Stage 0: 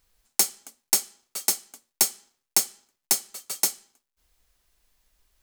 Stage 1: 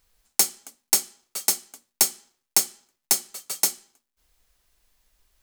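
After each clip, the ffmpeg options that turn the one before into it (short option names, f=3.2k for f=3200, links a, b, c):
-af "bandreject=f=60:t=h:w=6,bandreject=f=120:t=h:w=6,bandreject=f=180:t=h:w=6,bandreject=f=240:t=h:w=6,bandreject=f=300:t=h:w=6,bandreject=f=360:t=h:w=6,volume=1.5dB"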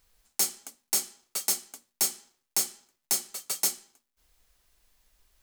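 -af "alimiter=limit=-13dB:level=0:latency=1:release=16"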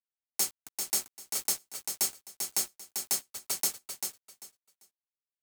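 -af "aeval=exprs='val(0)*gte(abs(val(0)),0.02)':c=same,aecho=1:1:393|786|1179:0.501|0.105|0.0221,volume=-3dB"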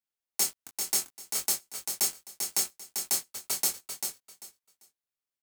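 -filter_complex "[0:a]asplit=2[a][b];[b]adelay=23,volume=-6dB[c];[a][c]amix=inputs=2:normalize=0,volume=1dB"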